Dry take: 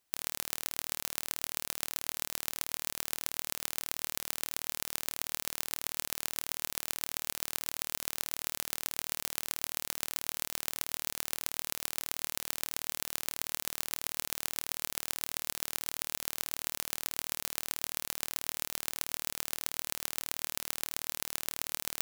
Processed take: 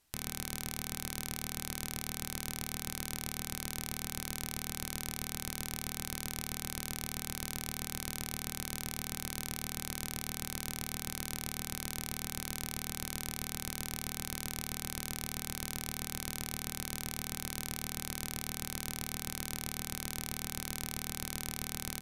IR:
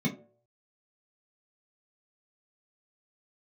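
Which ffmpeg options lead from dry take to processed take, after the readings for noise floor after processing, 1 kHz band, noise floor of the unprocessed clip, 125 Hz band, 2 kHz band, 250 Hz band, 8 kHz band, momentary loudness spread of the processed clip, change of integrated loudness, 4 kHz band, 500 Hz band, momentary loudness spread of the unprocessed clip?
-49 dBFS, -1.0 dB, -78 dBFS, +12.5 dB, -1.5 dB, +9.0 dB, -2.0 dB, 0 LU, -3.0 dB, -2.0 dB, 0.0 dB, 1 LU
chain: -filter_complex "[0:a]lowshelf=f=130:g=12,bandreject=f=256.4:t=h:w=4,bandreject=f=512.8:t=h:w=4,bandreject=f=769.2:t=h:w=4,bandreject=f=1025.6:t=h:w=4,bandreject=f=1282:t=h:w=4,bandreject=f=1538.4:t=h:w=4,bandreject=f=1794.8:t=h:w=4,bandreject=f=2051.2:t=h:w=4,bandreject=f=2307.6:t=h:w=4,bandreject=f=2564:t=h:w=4,asoftclip=type=tanh:threshold=0.2,asplit=2[s0][s1];[1:a]atrim=start_sample=2205[s2];[s1][s2]afir=irnorm=-1:irlink=0,volume=0.1[s3];[s0][s3]amix=inputs=2:normalize=0,aresample=32000,aresample=44100,volume=1.88"

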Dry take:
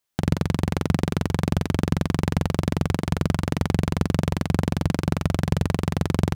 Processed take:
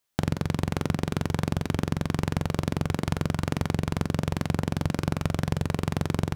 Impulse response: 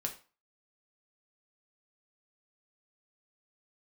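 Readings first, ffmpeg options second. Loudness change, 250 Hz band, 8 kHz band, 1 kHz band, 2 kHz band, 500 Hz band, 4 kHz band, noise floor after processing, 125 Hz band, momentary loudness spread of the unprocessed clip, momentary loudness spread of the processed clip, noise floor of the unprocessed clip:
-4.0 dB, -4.5 dB, -2.5 dB, -3.0 dB, -2.5 dB, -3.5 dB, -3.0 dB, -46 dBFS, -4.5 dB, 1 LU, 0 LU, -48 dBFS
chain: -filter_complex "[0:a]acompressor=threshold=0.0794:ratio=6,asplit=2[s0][s1];[1:a]atrim=start_sample=2205,asetrate=43218,aresample=44100[s2];[s1][s2]afir=irnorm=-1:irlink=0,volume=0.168[s3];[s0][s3]amix=inputs=2:normalize=0"

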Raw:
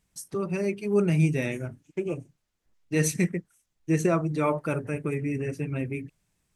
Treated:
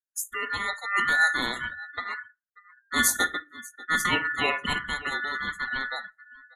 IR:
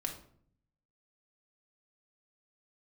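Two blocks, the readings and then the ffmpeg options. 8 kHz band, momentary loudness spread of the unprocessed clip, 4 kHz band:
+6.0 dB, 12 LU, +16.0 dB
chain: -filter_complex "[0:a]firequalizer=gain_entry='entry(130,0);entry(280,-8);entry(1600,7);entry(2600,2);entry(4600,-20);entry(7700,11)':delay=0.05:min_phase=1,aecho=1:1:56|588:0.1|0.119,aeval=exprs='val(0)*sin(2*PI*1600*n/s)':c=same,asplit=2[s0][s1];[1:a]atrim=start_sample=2205,lowpass=8300[s2];[s1][s2]afir=irnorm=-1:irlink=0,volume=0.316[s3];[s0][s3]amix=inputs=2:normalize=0,afftdn=nr=34:nf=-46,volume=1.26"

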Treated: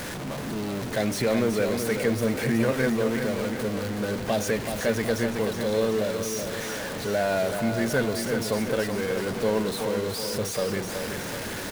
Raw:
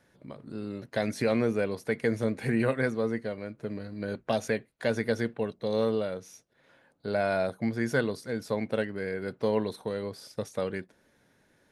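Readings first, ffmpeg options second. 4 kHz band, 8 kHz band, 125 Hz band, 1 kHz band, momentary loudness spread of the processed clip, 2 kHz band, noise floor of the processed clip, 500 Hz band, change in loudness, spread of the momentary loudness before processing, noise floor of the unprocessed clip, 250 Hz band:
+10.0 dB, +15.5 dB, +4.5 dB, +5.0 dB, 7 LU, +4.5 dB, -33 dBFS, +4.0 dB, +4.0 dB, 11 LU, -67 dBFS, +4.5 dB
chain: -filter_complex "[0:a]aeval=exprs='val(0)+0.5*0.0376*sgn(val(0))':c=same,asplit=2[s0][s1];[s1]aecho=0:1:376|752|1128|1504|1880|2256:0.447|0.237|0.125|0.0665|0.0352|0.0187[s2];[s0][s2]amix=inputs=2:normalize=0"

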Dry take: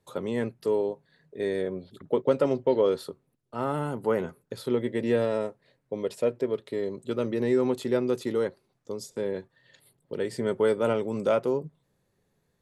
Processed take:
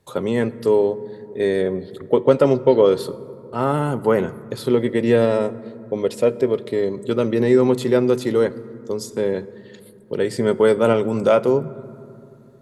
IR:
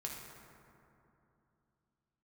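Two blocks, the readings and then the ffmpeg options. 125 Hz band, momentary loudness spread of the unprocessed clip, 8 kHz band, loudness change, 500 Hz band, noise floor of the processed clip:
+10.5 dB, 13 LU, no reading, +9.0 dB, +9.0 dB, -45 dBFS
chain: -filter_complex "[0:a]asplit=2[s0][s1];[1:a]atrim=start_sample=2205,lowshelf=f=220:g=7.5[s2];[s1][s2]afir=irnorm=-1:irlink=0,volume=0.224[s3];[s0][s3]amix=inputs=2:normalize=0,volume=2.37"

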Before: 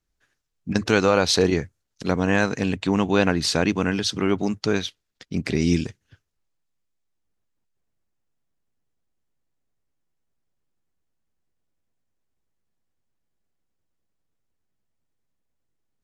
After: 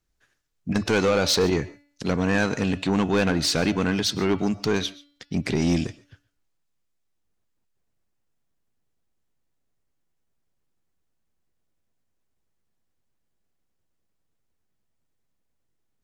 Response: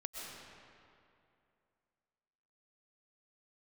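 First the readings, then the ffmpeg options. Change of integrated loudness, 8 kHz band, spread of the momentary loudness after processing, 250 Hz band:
-1.5 dB, 0.0 dB, 10 LU, -1.0 dB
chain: -filter_complex "[0:a]bandreject=f=287.8:t=h:w=4,bandreject=f=575.6:t=h:w=4,bandreject=f=863.4:t=h:w=4,bandreject=f=1151.2:t=h:w=4,bandreject=f=1439:t=h:w=4,bandreject=f=1726.8:t=h:w=4,bandreject=f=2014.6:t=h:w=4,bandreject=f=2302.4:t=h:w=4,bandreject=f=2590.2:t=h:w=4,bandreject=f=2878:t=h:w=4,bandreject=f=3165.8:t=h:w=4,bandreject=f=3453.6:t=h:w=4,bandreject=f=3741.4:t=h:w=4,bandreject=f=4029.2:t=h:w=4,bandreject=f=4317:t=h:w=4,bandreject=f=4604.8:t=h:w=4,bandreject=f=4892.6:t=h:w=4,bandreject=f=5180.4:t=h:w=4,bandreject=f=5468.2:t=h:w=4,asoftclip=type=tanh:threshold=0.141,asplit=2[s0][s1];[1:a]atrim=start_sample=2205,atrim=end_sample=6615[s2];[s1][s2]afir=irnorm=-1:irlink=0,volume=0.422[s3];[s0][s3]amix=inputs=2:normalize=0"

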